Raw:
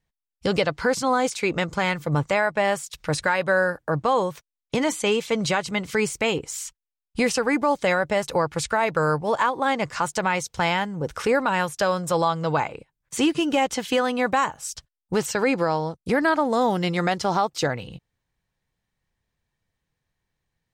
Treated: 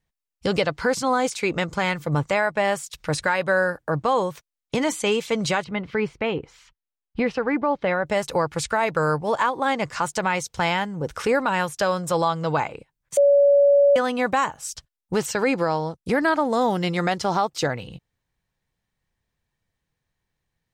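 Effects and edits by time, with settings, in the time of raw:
0:05.64–0:08.06: high-frequency loss of the air 340 metres
0:13.17–0:13.96: beep over 567 Hz −12 dBFS

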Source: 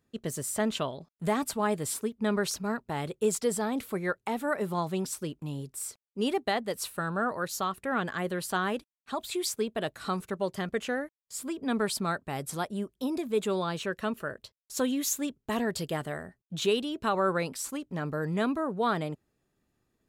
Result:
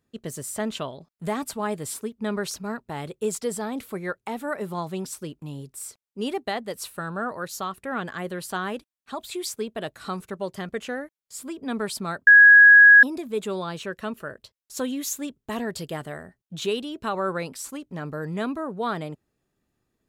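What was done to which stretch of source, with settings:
0:12.27–0:13.03: beep over 1,660 Hz −7.5 dBFS

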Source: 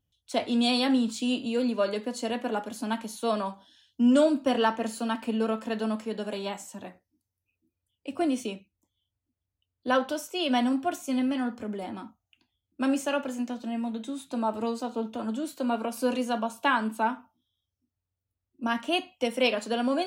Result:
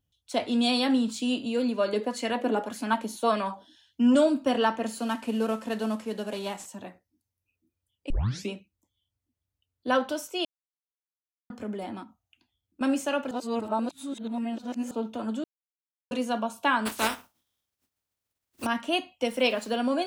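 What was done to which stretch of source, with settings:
0:01.93–0:04.15: auto-filter bell 1.7 Hz 290–2,300 Hz +12 dB
0:04.99–0:06.66: variable-slope delta modulation 64 kbit/s
0:08.10: tape start 0.40 s
0:10.45–0:11.50: silence
0:12.03–0:12.81: downward compressor, threshold −45 dBFS
0:13.31–0:14.91: reverse
0:15.44–0:16.11: silence
0:16.85–0:18.65: compressing power law on the bin magnitudes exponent 0.38
0:19.28–0:19.76: centre clipping without the shift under −46 dBFS

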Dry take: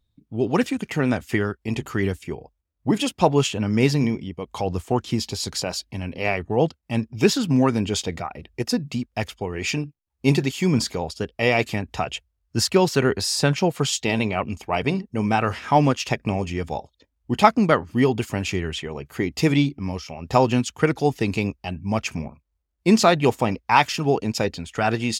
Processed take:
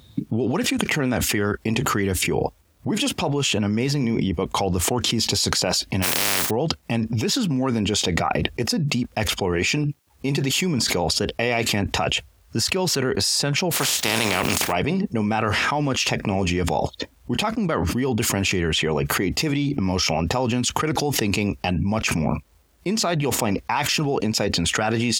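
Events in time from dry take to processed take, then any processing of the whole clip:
0:06.02–0:06.49: compressing power law on the bin magnitudes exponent 0.13
0:13.71–0:14.71: compressing power law on the bin magnitudes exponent 0.39
whole clip: high-pass filter 95 Hz; envelope flattener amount 100%; level −12.5 dB

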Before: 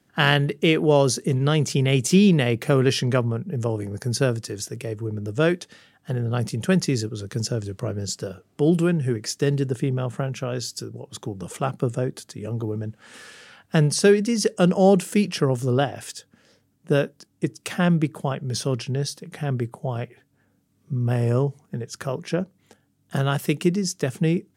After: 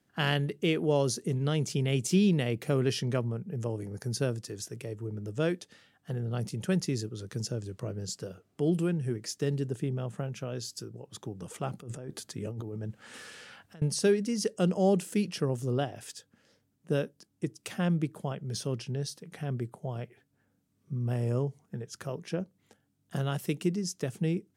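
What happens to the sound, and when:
0:11.71–0:13.82: compressor whose output falls as the input rises −31 dBFS
whole clip: dynamic equaliser 1,400 Hz, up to −4 dB, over −38 dBFS, Q 0.7; level −8 dB

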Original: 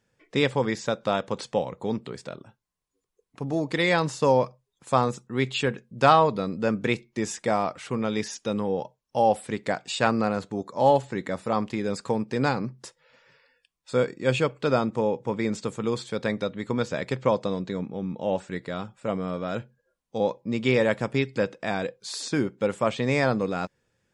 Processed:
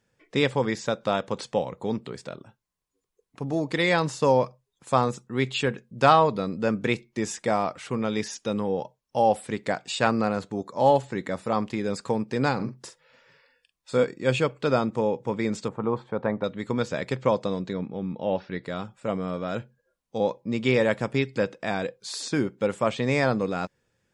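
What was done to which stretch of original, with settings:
0:12.55–0:14.04: double-tracking delay 44 ms −8.5 dB
0:15.68–0:16.44: drawn EQ curve 460 Hz 0 dB, 890 Hz +8 dB, 6,500 Hz −28 dB
0:17.73–0:18.64: Butterworth low-pass 5,500 Hz 72 dB per octave

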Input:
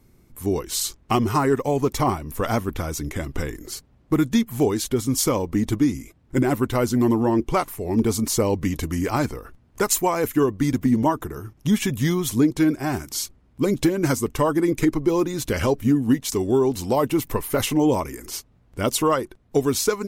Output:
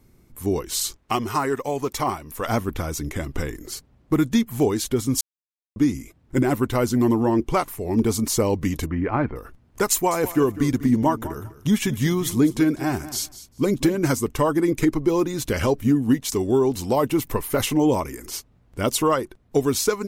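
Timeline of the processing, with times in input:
0:00.97–0:02.48: low-shelf EQ 390 Hz −9 dB
0:05.21–0:05.76: silence
0:08.86–0:09.36: low-pass filter 2,300 Hz 24 dB per octave
0:09.91–0:13.99: repeating echo 199 ms, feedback 17%, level −15 dB

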